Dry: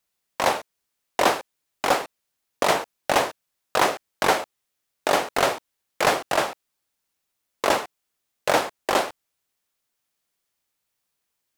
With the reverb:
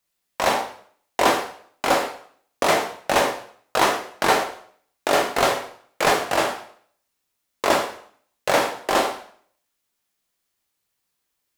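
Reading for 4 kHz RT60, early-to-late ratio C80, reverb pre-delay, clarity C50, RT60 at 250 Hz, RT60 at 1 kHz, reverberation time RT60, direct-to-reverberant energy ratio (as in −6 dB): 0.50 s, 11.0 dB, 5 ms, 7.5 dB, 0.55 s, 0.55 s, 0.55 s, 2.5 dB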